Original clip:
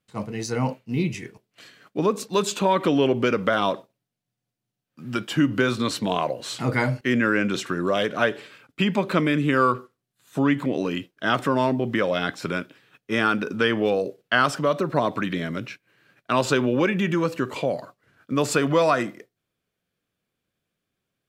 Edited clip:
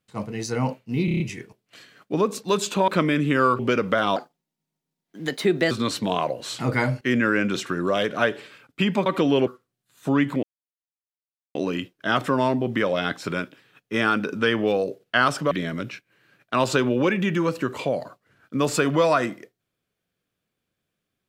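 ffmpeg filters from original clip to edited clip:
-filter_complex "[0:a]asplit=14[a][b][c][d][e][f][g][h][i][j][k][l][m][n];[a]atrim=end=1.082[o];[b]atrim=start=1.048:end=1.082[p];[c]atrim=start=1.048:end=1.082[q];[d]atrim=start=1.048:end=1.082[r];[e]atrim=start=1.048:end=1.082[s];[f]atrim=start=1.048:end=2.732[t];[g]atrim=start=9.058:end=9.772[u];[h]atrim=start=3.138:end=3.714[v];[i]atrim=start=3.71:end=5.71,asetpts=PTS-STARTPTS,asetrate=56889,aresample=44100,atrim=end_sample=68372,asetpts=PTS-STARTPTS[w];[j]atrim=start=5.706:end=9.062[x];[k]atrim=start=2.728:end=3.142[y];[l]atrim=start=9.768:end=10.73,asetpts=PTS-STARTPTS,afade=t=out:st=0.958:d=0.004:c=hsin,apad=pad_dur=1.12[z];[m]atrim=start=10.73:end=14.692,asetpts=PTS-STARTPTS,afade=t=in:d=0.004:c=hsin[aa];[n]atrim=start=15.278[ab];[o][p]acrossfade=d=0.004:c1=hsin:c2=hsin[ac];[ac][q]acrossfade=d=0.004:c1=hsin:c2=hsin[ad];[ad][r]acrossfade=d=0.004:c1=hsin:c2=hsin[ae];[ae][s]acrossfade=d=0.004:c1=hsin:c2=hsin[af];[af][t]acrossfade=d=0.004:c1=hsin:c2=hsin[ag];[ag][u]acrossfade=d=0.004:c1=hsin:c2=hsin[ah];[ah][v]acrossfade=d=0.004:c1=hsin:c2=hsin[ai];[ai][w]acrossfade=d=0.004:c1=hsin:c2=hsin[aj];[aj][x]acrossfade=d=0.004:c1=hsin:c2=hsin[ak];[ak][y]acrossfade=d=0.004:c1=hsin:c2=hsin[al];[z][aa]concat=n=2:v=0:a=1[am];[al][am]acrossfade=d=0.004:c1=hsin:c2=hsin[an];[an][ab]acrossfade=d=0.004:c1=hsin:c2=hsin"

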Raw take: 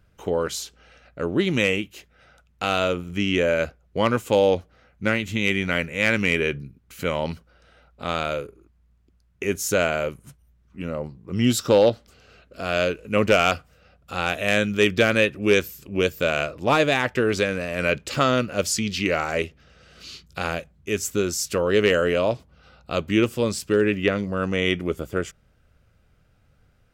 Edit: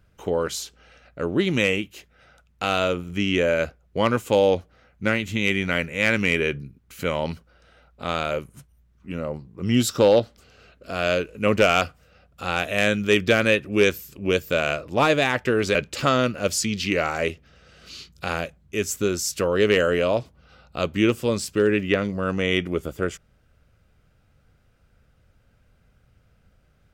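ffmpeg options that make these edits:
-filter_complex "[0:a]asplit=3[a][b][c];[a]atrim=end=8.312[d];[b]atrim=start=10.008:end=17.452[e];[c]atrim=start=17.888[f];[d][e]acrossfade=d=0.004:c1=hsin:c2=hsin[g];[g][f]acrossfade=d=0.004:c1=hsin:c2=hsin"

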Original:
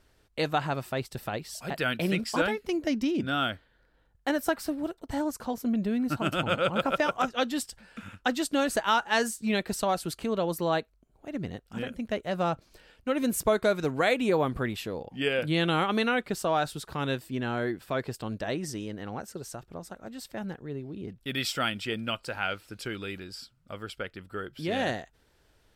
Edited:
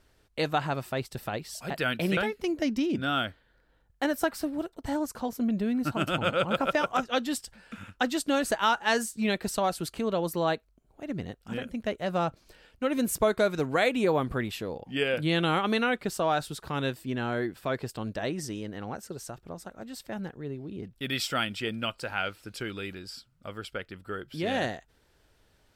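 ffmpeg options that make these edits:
-filter_complex "[0:a]asplit=2[a][b];[a]atrim=end=2.172[c];[b]atrim=start=2.418[d];[c][d]acrossfade=d=0.004:c1=hsin:c2=hsin"

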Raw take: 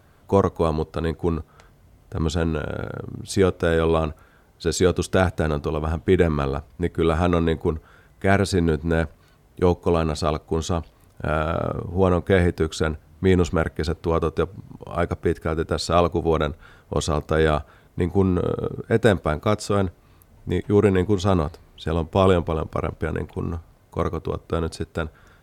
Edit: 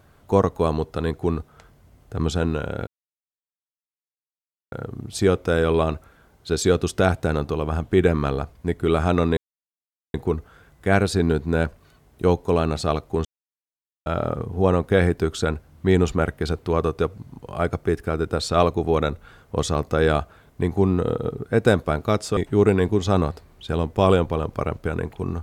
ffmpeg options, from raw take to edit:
-filter_complex "[0:a]asplit=6[a][b][c][d][e][f];[a]atrim=end=2.87,asetpts=PTS-STARTPTS,afade=t=out:st=2.866:d=0.004:c=hsin,apad=pad_dur=1.85[g];[b]atrim=start=2.87:end=7.52,asetpts=PTS-STARTPTS,afade=t=in:d=0.004:c=hsin,afade=t=out:st=4.646:d=0.004:c=hsin,apad=pad_dur=0.77[h];[c]atrim=start=7.52:end=10.63,asetpts=PTS-STARTPTS,afade=t=in:d=0.004:c=hsin,afade=t=out:st=3.106:d=0.004:c=hsin[i];[d]atrim=start=10.63:end=11.44,asetpts=PTS-STARTPTS,volume=0[j];[e]atrim=start=11.44:end=19.752,asetpts=PTS-STARTPTS,afade=t=in:d=0.004:c=hsin[k];[f]atrim=start=20.538[l];[g][h][i][j][k]concat=n=5:v=0:a=1[m];[m][l]acrossfade=d=0.004:c1=hsin:c2=hsin"

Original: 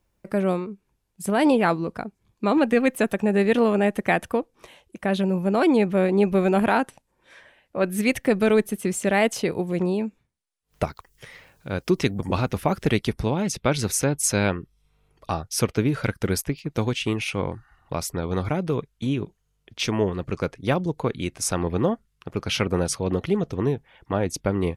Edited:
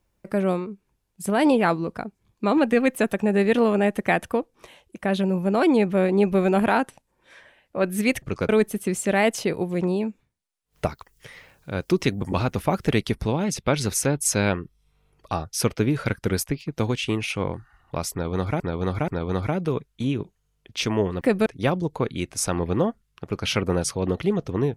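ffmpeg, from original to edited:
-filter_complex "[0:a]asplit=7[a][b][c][d][e][f][g];[a]atrim=end=8.222[h];[b]atrim=start=20.228:end=20.502[i];[c]atrim=start=8.468:end=18.582[j];[d]atrim=start=18.098:end=18.582[k];[e]atrim=start=18.098:end=20.232[l];[f]atrim=start=8.218:end=8.472[m];[g]atrim=start=20.498[n];[h][i]acrossfade=d=0.004:c1=hsin:c2=hsin[o];[o][j]acrossfade=d=0.004:c1=hsin:c2=hsin[p];[p][k]acrossfade=d=0.004:c1=hsin:c2=hsin[q];[q][l]acrossfade=d=0.004:c1=hsin:c2=hsin[r];[r][m]acrossfade=d=0.004:c1=hsin:c2=hsin[s];[s][n]acrossfade=d=0.004:c1=hsin:c2=hsin"

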